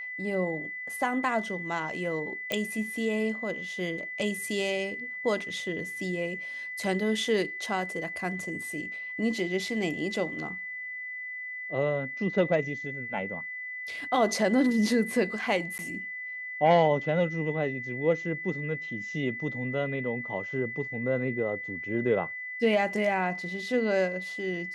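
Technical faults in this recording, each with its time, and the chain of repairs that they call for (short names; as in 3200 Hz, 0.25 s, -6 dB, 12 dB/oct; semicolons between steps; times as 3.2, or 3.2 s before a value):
tone 2000 Hz -35 dBFS
2.52 pop -14 dBFS
15.78–15.79 gap 9.7 ms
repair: de-click; notch 2000 Hz, Q 30; interpolate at 15.78, 9.7 ms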